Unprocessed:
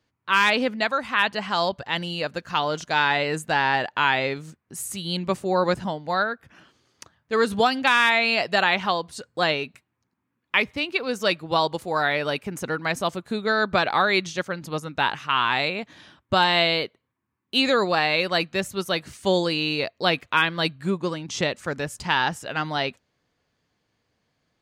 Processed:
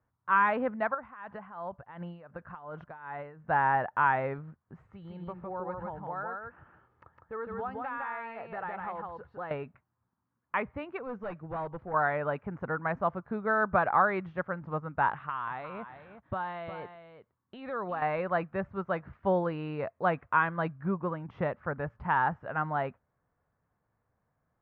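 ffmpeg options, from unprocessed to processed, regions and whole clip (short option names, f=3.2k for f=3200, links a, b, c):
-filter_complex "[0:a]asettb=1/sr,asplit=3[a][b][c];[a]atrim=end=0.944[d];[b]atrim=start=0.94:end=3.45,asetpts=PTS-STARTPTS,afade=t=in:d=0.004:c=qsin,afade=t=out:st=2.506:d=0.004:c=qsin,acompressor=threshold=-27dB:ratio=16:attack=3.2:release=140:knee=1:detection=peak,tremolo=f=2.7:d=0.77[e];[c]atrim=start=3.446[f];[d][e]acrossfade=d=0.004:c1=hsin:c2=qsin[g];[g][f]acrossfade=d=0.004:c1=qsin:c2=hsin,asettb=1/sr,asplit=3[h][i][j];[h]atrim=end=4.864[k];[i]atrim=start=4.86:end=9.51,asetpts=PTS-STARTPTS,afade=t=in:d=0.004:c=qsin,afade=t=out:st=4.646:d=0.004:c=qsin,acompressor=threshold=-35dB:ratio=2.5:attack=3.2:release=140:knee=1:detection=peak,aecho=1:1:2.3:0.33,atrim=end_sample=205065,aecho=1:1:158:0.708,atrim=end_sample=205065[l];[j]atrim=start=9.506[m];[k][l]acrossfade=d=0.004:c1=hsin:c2=qsin[n];[n][m]acrossfade=d=0.004:c1=qsin:c2=hsin,asettb=1/sr,asplit=3[o][p][q];[o]atrim=end=10.994[r];[p]atrim=start=10.99:end=11.94,asetpts=PTS-STARTPTS,afade=t=in:d=0.004:c=qsin,afade=t=out:st=0.946:d=0.004:c=qsin,equalizer=f=1.1k:t=o:w=1.9:g=-7,asoftclip=type=hard:threshold=-27.5dB[s];[q]atrim=start=11.936[t];[r][s]acrossfade=d=0.004:c1=hsin:c2=qsin[u];[u][t]acrossfade=d=0.004:c1=qsin:c2=hsin,asettb=1/sr,asplit=3[v][w][x];[v]atrim=end=15.114[y];[w]atrim=start=15.11:end=18.02,asetpts=PTS-STARTPTS,afade=t=in:d=0.004:c=qsin,afade=t=out:st=2.906:d=0.004:c=qsin,equalizer=f=3.6k:t=o:w=0.68:g=8,acompressor=threshold=-26dB:ratio=4:attack=3.2:release=140:knee=1:detection=peak,aecho=1:1:359:0.299,atrim=end_sample=128331[z];[x]atrim=start=18.016[aa];[y][z]acrossfade=d=0.004:c1=hsin:c2=qsin[ab];[ab][aa]acrossfade=d=0.004:c1=qsin:c2=hsin,lowpass=f=1.4k:w=0.5412,lowpass=f=1.4k:w=1.3066,equalizer=f=320:w=0.85:g=-9.5"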